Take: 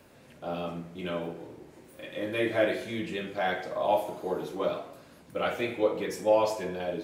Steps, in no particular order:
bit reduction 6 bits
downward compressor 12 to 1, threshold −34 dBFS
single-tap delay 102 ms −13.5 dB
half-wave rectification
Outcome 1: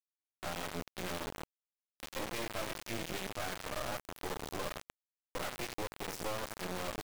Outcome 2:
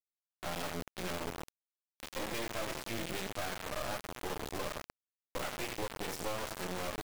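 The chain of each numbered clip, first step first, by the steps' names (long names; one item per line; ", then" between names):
downward compressor, then half-wave rectification, then single-tap delay, then bit reduction
half-wave rectification, then single-tap delay, then downward compressor, then bit reduction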